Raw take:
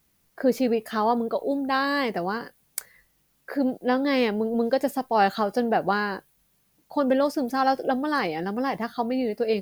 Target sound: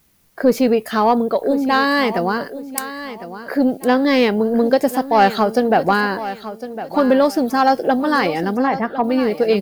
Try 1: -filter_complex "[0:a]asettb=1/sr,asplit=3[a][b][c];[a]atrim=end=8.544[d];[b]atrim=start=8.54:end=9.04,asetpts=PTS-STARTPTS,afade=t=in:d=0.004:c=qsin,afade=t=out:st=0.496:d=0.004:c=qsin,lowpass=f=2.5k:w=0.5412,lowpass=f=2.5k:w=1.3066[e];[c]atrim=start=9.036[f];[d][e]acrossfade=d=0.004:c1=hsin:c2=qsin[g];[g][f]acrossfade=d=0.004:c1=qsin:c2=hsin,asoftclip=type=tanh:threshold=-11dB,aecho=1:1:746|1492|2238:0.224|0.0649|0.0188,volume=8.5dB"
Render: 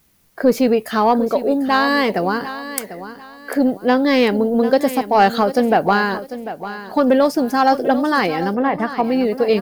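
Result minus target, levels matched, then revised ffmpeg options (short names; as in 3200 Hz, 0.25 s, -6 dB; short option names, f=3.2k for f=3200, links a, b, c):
echo 0.31 s early
-filter_complex "[0:a]asettb=1/sr,asplit=3[a][b][c];[a]atrim=end=8.544[d];[b]atrim=start=8.54:end=9.04,asetpts=PTS-STARTPTS,afade=t=in:d=0.004:c=qsin,afade=t=out:st=0.496:d=0.004:c=qsin,lowpass=f=2.5k:w=0.5412,lowpass=f=2.5k:w=1.3066[e];[c]atrim=start=9.036[f];[d][e]acrossfade=d=0.004:c1=hsin:c2=qsin[g];[g][f]acrossfade=d=0.004:c1=qsin:c2=hsin,asoftclip=type=tanh:threshold=-11dB,aecho=1:1:1056|2112|3168:0.224|0.0649|0.0188,volume=8.5dB"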